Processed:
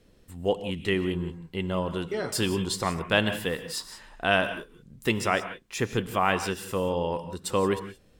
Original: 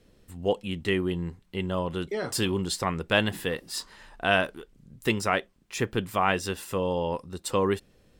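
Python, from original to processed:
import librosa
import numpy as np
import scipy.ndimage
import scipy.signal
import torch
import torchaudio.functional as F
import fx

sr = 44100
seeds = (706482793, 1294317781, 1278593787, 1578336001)

y = fx.rev_gated(x, sr, seeds[0], gate_ms=200, shape='rising', drr_db=10.5)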